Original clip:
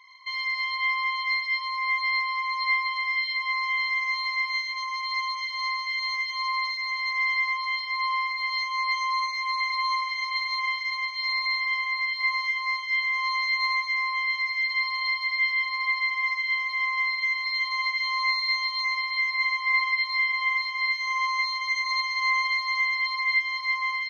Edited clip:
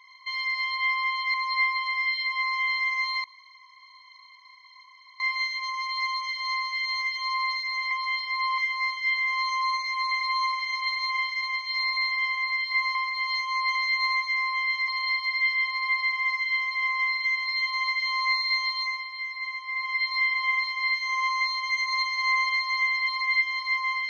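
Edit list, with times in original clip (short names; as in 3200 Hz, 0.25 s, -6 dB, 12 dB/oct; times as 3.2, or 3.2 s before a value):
1.34–2.44 cut
4.34 insert room tone 1.96 s
7.05–7.51 cut
8.18–8.98 swap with 12.44–13.35
14.48–14.86 cut
18.74–20.05 dip -8 dB, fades 0.28 s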